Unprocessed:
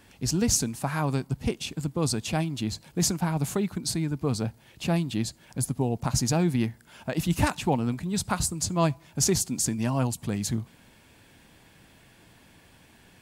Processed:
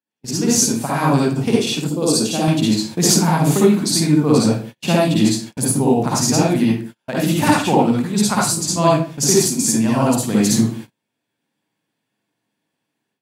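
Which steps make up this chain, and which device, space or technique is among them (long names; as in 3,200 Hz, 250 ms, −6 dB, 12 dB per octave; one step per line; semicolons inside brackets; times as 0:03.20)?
far laptop microphone (convolution reverb RT60 0.40 s, pre-delay 50 ms, DRR −5 dB; high-pass filter 140 Hz 24 dB per octave; automatic gain control gain up to 12 dB)
noise gate −29 dBFS, range −37 dB
0:01.89–0:02.48: octave-band graphic EQ 125/1,000/2,000 Hz −10/−6/−10 dB
level −1 dB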